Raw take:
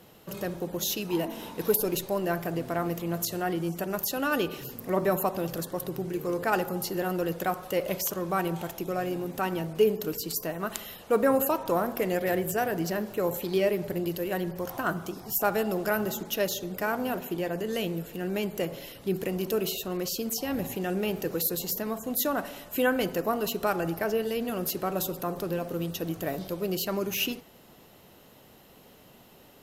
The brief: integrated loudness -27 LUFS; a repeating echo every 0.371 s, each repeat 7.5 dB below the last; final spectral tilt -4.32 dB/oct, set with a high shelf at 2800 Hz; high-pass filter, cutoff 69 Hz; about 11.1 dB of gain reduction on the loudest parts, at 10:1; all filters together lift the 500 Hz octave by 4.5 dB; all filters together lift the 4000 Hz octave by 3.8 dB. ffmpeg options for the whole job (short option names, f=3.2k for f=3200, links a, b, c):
-af "highpass=69,equalizer=f=500:t=o:g=5.5,highshelf=f=2.8k:g=-3.5,equalizer=f=4k:t=o:g=8,acompressor=threshold=-25dB:ratio=10,aecho=1:1:371|742|1113|1484|1855:0.422|0.177|0.0744|0.0312|0.0131,volume=3dB"